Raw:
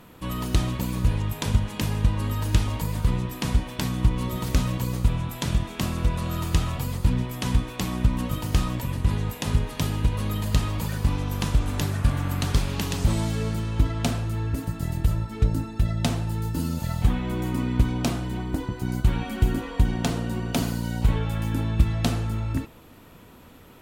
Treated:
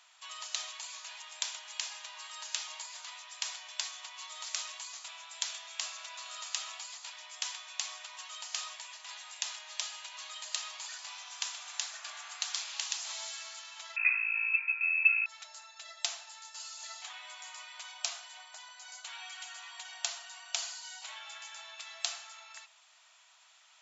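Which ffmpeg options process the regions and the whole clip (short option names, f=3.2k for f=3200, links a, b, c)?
-filter_complex "[0:a]asettb=1/sr,asplit=3[a][b][c];[a]atrim=end=13.964[d];[b]atrim=start=13.96:end=15.26,asetpts=PTS-STARTPTS,afade=t=in:d=0.004:c=qsin,afade=t=out:st=1.296:d=0.004:c=qsin,lowpass=f=2.3k:t=q:w=0.5098,lowpass=f=2.3k:t=q:w=0.6013,lowpass=f=2.3k:t=q:w=0.9,lowpass=f=2.3k:t=q:w=2.563,afreqshift=-2700,equalizer=f=580:t=o:w=0.3:g=-7.5,asplit=2[e][f];[f]adelay=13,volume=-2dB[g];[e][g]amix=inputs=2:normalize=0,atrim=end_sample=57330[h];[c]atrim=start=15.256[i];[d][h]acrossfade=d=0.004:c1=hsin:c2=qsin[j];[j][i]acrossfade=d=0.004:c1=qsin:c2=hsin,afftfilt=real='re*between(b*sr/4096,600,7600)':imag='im*between(b*sr/4096,600,7600)':win_size=4096:overlap=0.75,aderivative,volume=4dB"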